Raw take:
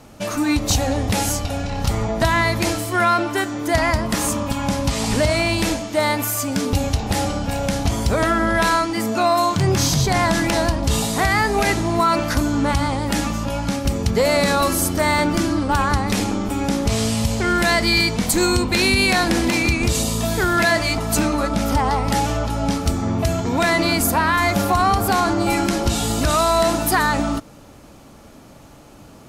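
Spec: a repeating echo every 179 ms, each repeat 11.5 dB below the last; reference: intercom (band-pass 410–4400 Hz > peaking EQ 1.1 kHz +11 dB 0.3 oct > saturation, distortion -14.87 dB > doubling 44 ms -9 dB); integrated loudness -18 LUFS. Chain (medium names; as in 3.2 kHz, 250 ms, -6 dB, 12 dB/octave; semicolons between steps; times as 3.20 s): band-pass 410–4400 Hz; peaking EQ 1.1 kHz +11 dB 0.3 oct; feedback delay 179 ms, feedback 27%, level -11.5 dB; saturation -10.5 dBFS; doubling 44 ms -9 dB; trim +2 dB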